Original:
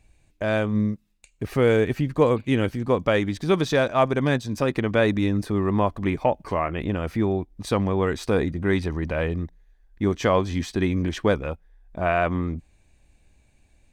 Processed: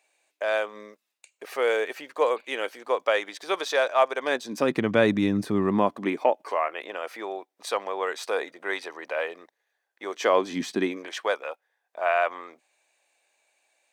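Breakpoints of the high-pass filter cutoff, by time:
high-pass filter 24 dB per octave
0:04.19 500 Hz
0:04.84 130 Hz
0:05.64 130 Hz
0:06.60 510 Hz
0:10.08 510 Hz
0:10.71 170 Hz
0:11.09 550 Hz

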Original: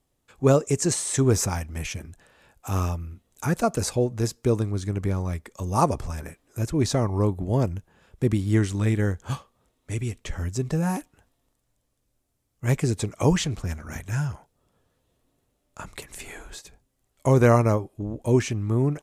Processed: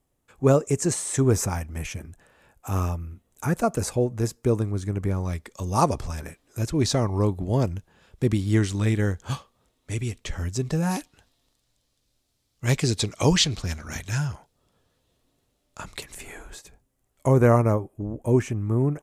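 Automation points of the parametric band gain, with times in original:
parametric band 4,200 Hz 1.3 octaves
−5 dB
from 0:05.23 +4.5 dB
from 0:10.91 +12.5 dB
from 0:14.18 +6 dB
from 0:16.14 −4 dB
from 0:17.28 −12.5 dB

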